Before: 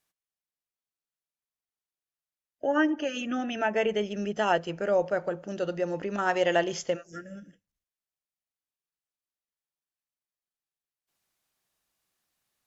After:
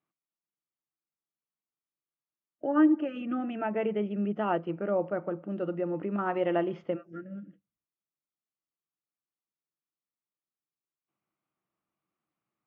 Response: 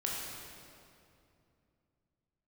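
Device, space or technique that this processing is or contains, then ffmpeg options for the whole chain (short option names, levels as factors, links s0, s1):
bass cabinet: -af "highpass=85,equalizer=f=140:t=q:w=4:g=7,equalizer=f=200:t=q:w=4:g=7,equalizer=f=320:t=q:w=4:g=10,equalizer=f=1200:t=q:w=4:g=6,equalizer=f=1700:t=q:w=4:g=-8,lowpass=f=2400:w=0.5412,lowpass=f=2400:w=1.3066,volume=0.562"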